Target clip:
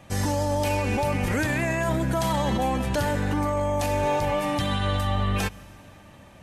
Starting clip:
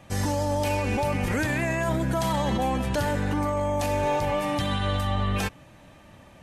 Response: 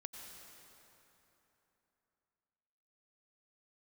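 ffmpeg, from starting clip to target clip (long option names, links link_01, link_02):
-filter_complex "[0:a]asplit=2[link_01][link_02];[1:a]atrim=start_sample=2205,highshelf=frequency=5000:gain=9[link_03];[link_02][link_03]afir=irnorm=-1:irlink=0,volume=-14dB[link_04];[link_01][link_04]amix=inputs=2:normalize=0"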